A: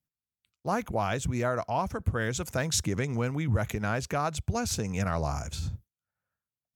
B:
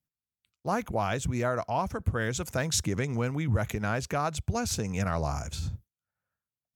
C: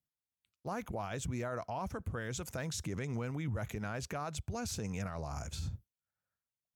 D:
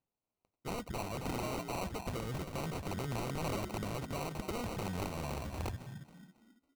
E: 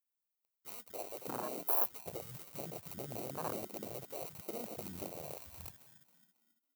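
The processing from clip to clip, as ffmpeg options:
-af anull
-af "alimiter=level_in=0.5dB:limit=-24dB:level=0:latency=1:release=32,volume=-0.5dB,volume=-5.5dB"
-filter_complex "[0:a]asplit=5[a][b][c][d][e];[b]adelay=274,afreqshift=48,volume=-8.5dB[f];[c]adelay=548,afreqshift=96,volume=-17.6dB[g];[d]adelay=822,afreqshift=144,volume=-26.7dB[h];[e]adelay=1096,afreqshift=192,volume=-35.9dB[i];[a][f][g][h][i]amix=inputs=5:normalize=0,acrossover=split=6700[j][k];[j]aeval=exprs='(mod(35.5*val(0)+1,2)-1)/35.5':c=same[l];[l][k]amix=inputs=2:normalize=0,acrusher=samples=26:mix=1:aa=0.000001"
-af "aemphasis=mode=production:type=riaa,acrusher=bits=4:mode=log:mix=0:aa=0.000001,afwtdn=0.0178,volume=1.5dB"

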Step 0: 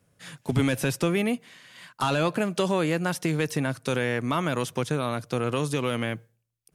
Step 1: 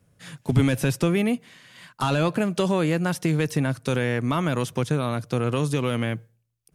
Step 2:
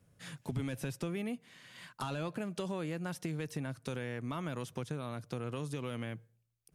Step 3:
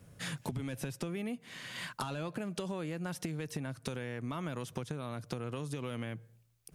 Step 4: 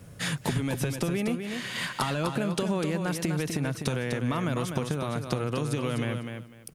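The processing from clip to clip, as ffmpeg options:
-af "lowshelf=f=210:g=7.5"
-af "acompressor=threshold=-38dB:ratio=2,volume=-5dB"
-af "acompressor=threshold=-46dB:ratio=6,volume=10.5dB"
-af "aecho=1:1:250|500|750:0.473|0.0946|0.0189,volume=9dB"

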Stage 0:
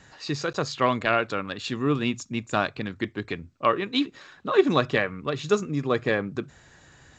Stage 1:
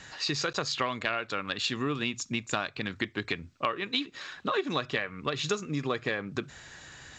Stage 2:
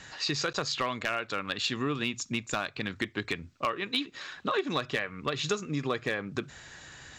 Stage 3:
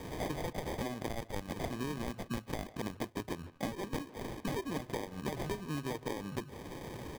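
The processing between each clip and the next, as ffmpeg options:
-af "equalizer=f=3.7k:w=0.33:g=8.5,acompressor=threshold=-27dB:ratio=6"
-af "asoftclip=type=hard:threshold=-18.5dB"
-filter_complex "[0:a]acrusher=samples=32:mix=1:aa=0.000001,asplit=2[a][b];[b]adelay=150,highpass=300,lowpass=3.4k,asoftclip=type=hard:threshold=-27.5dB,volume=-19dB[c];[a][c]amix=inputs=2:normalize=0,acrossover=split=1200|5200[d][e][f];[d]acompressor=threshold=-41dB:ratio=4[g];[e]acompressor=threshold=-53dB:ratio=4[h];[f]acompressor=threshold=-57dB:ratio=4[i];[g][h][i]amix=inputs=3:normalize=0,volume=4.5dB"

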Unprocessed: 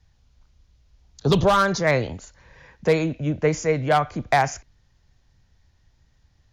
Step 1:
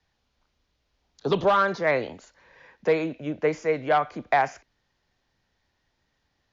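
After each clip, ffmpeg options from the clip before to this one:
-filter_complex "[0:a]acrossover=split=220 5300:gain=0.141 1 0.251[a][b][c];[a][b][c]amix=inputs=3:normalize=0,acrossover=split=3500[d][e];[e]acompressor=threshold=-45dB:ratio=4:attack=1:release=60[f];[d][f]amix=inputs=2:normalize=0,volume=-2dB"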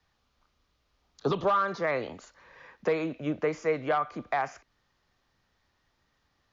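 -af "equalizer=f=1.2k:t=o:w=0.27:g=8.5,alimiter=limit=-17dB:level=0:latency=1:release=337"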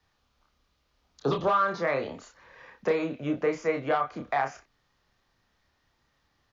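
-filter_complex "[0:a]asplit=2[a][b];[b]adelay=29,volume=-4.5dB[c];[a][c]amix=inputs=2:normalize=0"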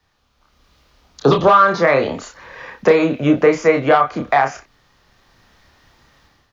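-filter_complex "[0:a]asplit=2[a][b];[b]alimiter=limit=-20.5dB:level=0:latency=1:release=339,volume=1dB[c];[a][c]amix=inputs=2:normalize=0,dynaudnorm=f=390:g=3:m=12dB"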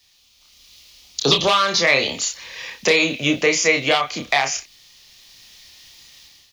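-af "aexciter=amount=11:drive=3.5:freq=2.2k,volume=-7dB"

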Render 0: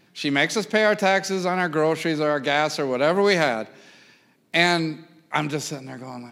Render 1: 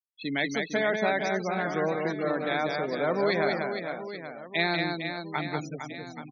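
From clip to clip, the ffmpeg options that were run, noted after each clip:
-filter_complex "[0:a]afftfilt=real='re*gte(hypot(re,im),0.0891)':imag='im*gte(hypot(re,im),0.0891)':win_size=1024:overlap=0.75,asplit=2[a][b];[b]aecho=0:1:190|456|828.4|1350|2080:0.631|0.398|0.251|0.158|0.1[c];[a][c]amix=inputs=2:normalize=0,volume=-8dB"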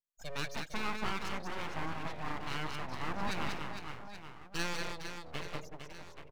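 -af "aeval=exprs='abs(val(0))':c=same,volume=-7.5dB"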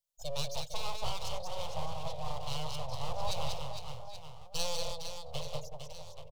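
-af "firequalizer=gain_entry='entry(140,0);entry(200,-26);entry(330,-27);entry(510,2);entry(1100,-9);entry(1600,-27);entry(3100,-2);entry(4700,0)':delay=0.05:min_phase=1,volume=6dB"

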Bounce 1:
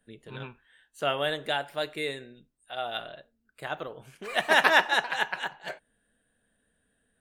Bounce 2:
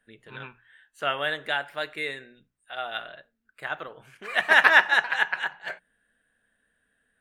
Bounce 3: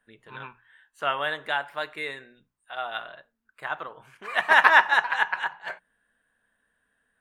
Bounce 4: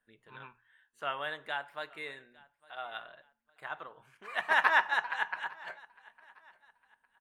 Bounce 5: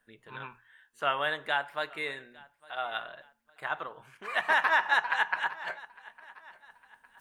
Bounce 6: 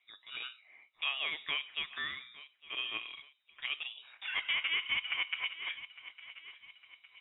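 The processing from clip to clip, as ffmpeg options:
-af "equalizer=f=1.7k:t=o:w=1.6:g=10.5,bandreject=f=60:t=h:w=6,bandreject=f=120:t=h:w=6,bandreject=f=180:t=h:w=6,volume=-4.5dB"
-af "equalizer=f=1k:t=o:w=0.68:g=9.5,volume=-2.5dB"
-af "aecho=1:1:856|1712:0.0631|0.0215,volume=-9dB"
-af "alimiter=limit=-20.5dB:level=0:latency=1:release=109,areverse,acompressor=mode=upward:threshold=-57dB:ratio=2.5,areverse,volume=7dB"
-af "acompressor=threshold=-36dB:ratio=2,lowpass=f=3.3k:t=q:w=0.5098,lowpass=f=3.3k:t=q:w=0.6013,lowpass=f=3.3k:t=q:w=0.9,lowpass=f=3.3k:t=q:w=2.563,afreqshift=-3900"

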